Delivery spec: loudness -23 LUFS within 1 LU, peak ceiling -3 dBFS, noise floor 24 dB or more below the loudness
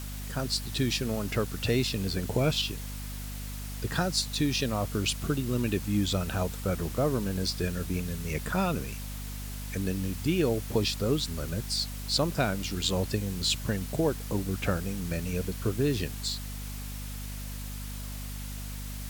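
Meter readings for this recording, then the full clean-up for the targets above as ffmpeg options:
hum 50 Hz; harmonics up to 250 Hz; hum level -36 dBFS; noise floor -38 dBFS; noise floor target -55 dBFS; loudness -30.5 LUFS; peak -12.0 dBFS; loudness target -23.0 LUFS
-> -af "bandreject=f=50:t=h:w=4,bandreject=f=100:t=h:w=4,bandreject=f=150:t=h:w=4,bandreject=f=200:t=h:w=4,bandreject=f=250:t=h:w=4"
-af "afftdn=nr=17:nf=-38"
-af "volume=7.5dB"

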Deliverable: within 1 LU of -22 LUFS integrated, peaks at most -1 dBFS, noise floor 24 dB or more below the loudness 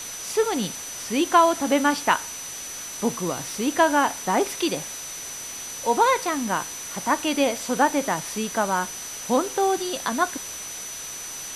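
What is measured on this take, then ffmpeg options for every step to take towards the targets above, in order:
steady tone 6000 Hz; tone level -35 dBFS; noise floor -35 dBFS; noise floor target -48 dBFS; loudness -24.0 LUFS; peak -5.0 dBFS; loudness target -22.0 LUFS
-> -af "bandreject=f=6k:w=30"
-af "afftdn=nr=13:nf=-35"
-af "volume=2dB"

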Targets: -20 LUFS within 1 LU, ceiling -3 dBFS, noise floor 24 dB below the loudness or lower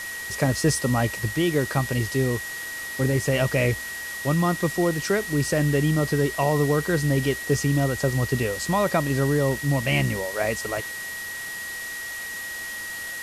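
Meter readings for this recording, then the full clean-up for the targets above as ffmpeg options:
steady tone 1900 Hz; tone level -32 dBFS; noise floor -34 dBFS; noise floor target -49 dBFS; loudness -24.5 LUFS; peak -8.5 dBFS; loudness target -20.0 LUFS
-> -af "bandreject=f=1.9k:w=30"
-af "afftdn=nr=15:nf=-34"
-af "volume=4.5dB"

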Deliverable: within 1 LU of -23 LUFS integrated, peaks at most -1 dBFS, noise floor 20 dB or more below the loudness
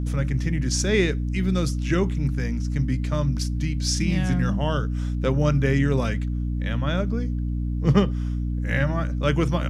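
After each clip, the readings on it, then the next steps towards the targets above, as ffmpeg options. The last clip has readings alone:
hum 60 Hz; harmonics up to 300 Hz; hum level -23 dBFS; loudness -24.0 LUFS; peak -7.0 dBFS; loudness target -23.0 LUFS
-> -af "bandreject=f=60:t=h:w=6,bandreject=f=120:t=h:w=6,bandreject=f=180:t=h:w=6,bandreject=f=240:t=h:w=6,bandreject=f=300:t=h:w=6"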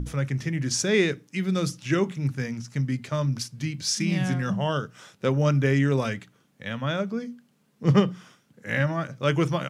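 hum none; loudness -26.0 LUFS; peak -8.0 dBFS; loudness target -23.0 LUFS
-> -af "volume=3dB"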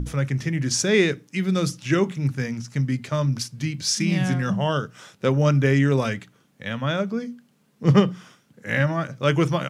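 loudness -23.0 LUFS; peak -5.0 dBFS; noise floor -62 dBFS

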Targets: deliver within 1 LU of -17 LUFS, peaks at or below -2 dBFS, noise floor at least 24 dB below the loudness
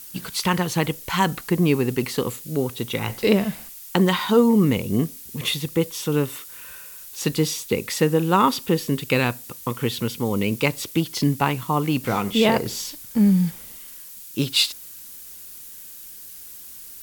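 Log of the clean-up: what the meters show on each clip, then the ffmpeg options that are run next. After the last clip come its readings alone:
noise floor -41 dBFS; noise floor target -47 dBFS; loudness -22.5 LUFS; peak -2.5 dBFS; loudness target -17.0 LUFS
-> -af "afftdn=nr=6:nf=-41"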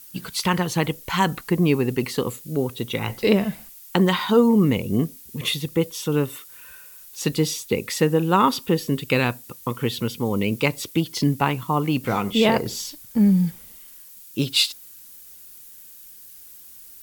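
noise floor -45 dBFS; noise floor target -47 dBFS
-> -af "afftdn=nr=6:nf=-45"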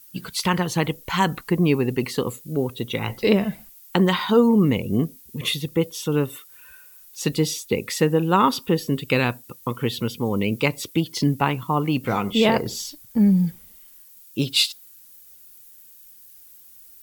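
noise floor -48 dBFS; loudness -22.5 LUFS; peak -2.5 dBFS; loudness target -17.0 LUFS
-> -af "volume=5.5dB,alimiter=limit=-2dB:level=0:latency=1"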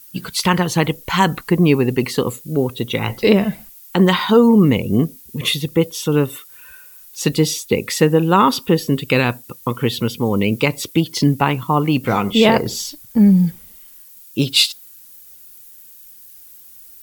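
loudness -17.0 LUFS; peak -2.0 dBFS; noise floor -43 dBFS

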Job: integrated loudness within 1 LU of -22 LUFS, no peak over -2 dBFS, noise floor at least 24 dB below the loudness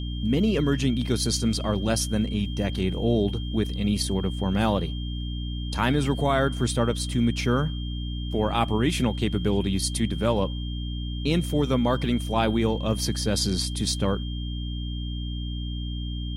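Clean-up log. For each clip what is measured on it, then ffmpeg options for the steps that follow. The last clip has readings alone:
hum 60 Hz; harmonics up to 300 Hz; hum level -28 dBFS; steady tone 3200 Hz; tone level -40 dBFS; loudness -26.0 LUFS; peak -8.5 dBFS; loudness target -22.0 LUFS
-> -af "bandreject=f=60:t=h:w=4,bandreject=f=120:t=h:w=4,bandreject=f=180:t=h:w=4,bandreject=f=240:t=h:w=4,bandreject=f=300:t=h:w=4"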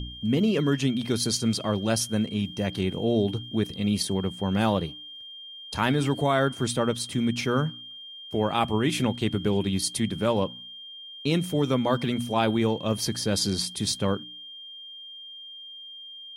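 hum none; steady tone 3200 Hz; tone level -40 dBFS
-> -af "bandreject=f=3.2k:w=30"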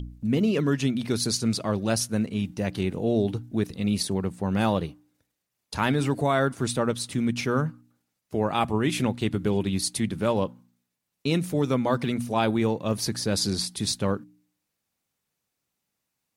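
steady tone none; loudness -26.5 LUFS; peak -9.5 dBFS; loudness target -22.0 LUFS
-> -af "volume=4.5dB"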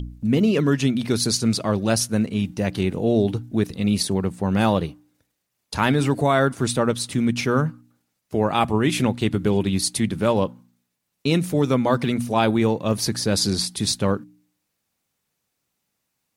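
loudness -22.0 LUFS; peak -5.0 dBFS; noise floor -77 dBFS

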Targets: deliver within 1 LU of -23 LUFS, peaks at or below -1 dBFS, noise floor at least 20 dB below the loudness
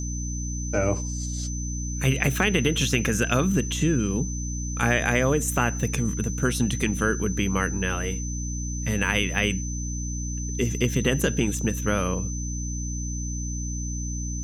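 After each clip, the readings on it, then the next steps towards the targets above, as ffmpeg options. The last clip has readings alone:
hum 60 Hz; harmonics up to 300 Hz; hum level -28 dBFS; steady tone 6100 Hz; tone level -35 dBFS; loudness -25.5 LUFS; peak -6.5 dBFS; loudness target -23.0 LUFS
-> -af "bandreject=f=60:t=h:w=6,bandreject=f=120:t=h:w=6,bandreject=f=180:t=h:w=6,bandreject=f=240:t=h:w=6,bandreject=f=300:t=h:w=6"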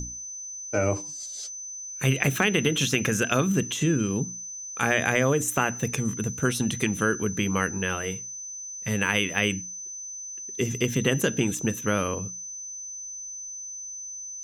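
hum none; steady tone 6100 Hz; tone level -35 dBFS
-> -af "bandreject=f=6.1k:w=30"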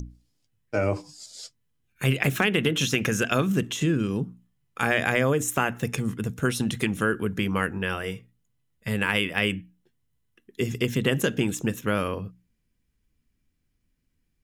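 steady tone none; loudness -26.0 LUFS; peak -6.5 dBFS; loudness target -23.0 LUFS
-> -af "volume=3dB"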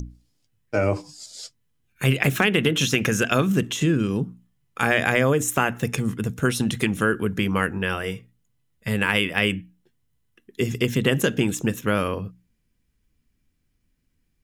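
loudness -23.0 LUFS; peak -3.5 dBFS; noise floor -71 dBFS

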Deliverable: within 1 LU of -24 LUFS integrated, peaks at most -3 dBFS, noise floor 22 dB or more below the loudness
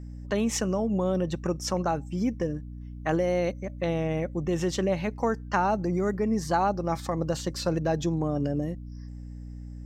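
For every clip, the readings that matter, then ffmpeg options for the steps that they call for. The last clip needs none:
hum 60 Hz; harmonics up to 300 Hz; hum level -37 dBFS; loudness -28.0 LUFS; peak -12.0 dBFS; loudness target -24.0 LUFS
-> -af "bandreject=f=60:t=h:w=6,bandreject=f=120:t=h:w=6,bandreject=f=180:t=h:w=6,bandreject=f=240:t=h:w=6,bandreject=f=300:t=h:w=6"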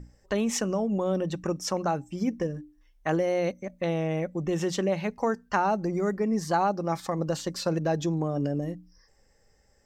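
hum none; loudness -28.5 LUFS; peak -11.5 dBFS; loudness target -24.0 LUFS
-> -af "volume=4.5dB"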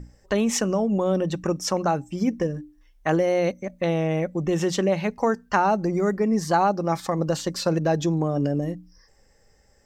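loudness -24.0 LUFS; peak -7.0 dBFS; noise floor -59 dBFS

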